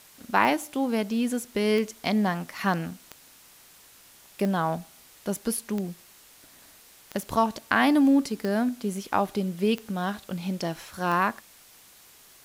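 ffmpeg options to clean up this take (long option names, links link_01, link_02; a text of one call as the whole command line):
ffmpeg -i in.wav -af "adeclick=threshold=4,afwtdn=0.0025" out.wav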